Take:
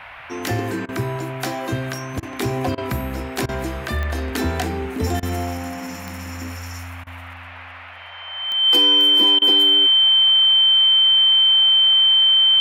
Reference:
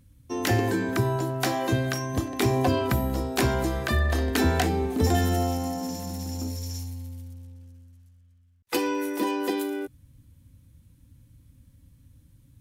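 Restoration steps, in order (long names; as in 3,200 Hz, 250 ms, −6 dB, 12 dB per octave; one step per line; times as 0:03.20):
click removal
notch filter 3,100 Hz, Q 30
repair the gap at 0:00.86/0:02.20/0:02.75/0:03.46/0:05.20/0:07.04/0:09.39, 26 ms
noise reduction from a noise print 20 dB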